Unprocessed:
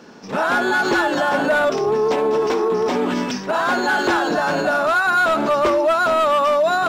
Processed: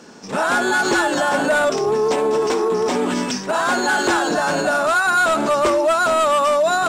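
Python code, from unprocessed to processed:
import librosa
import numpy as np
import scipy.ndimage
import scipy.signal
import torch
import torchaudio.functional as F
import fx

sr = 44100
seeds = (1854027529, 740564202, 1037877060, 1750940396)

y = fx.peak_eq(x, sr, hz=8300.0, db=13.5, octaves=0.81)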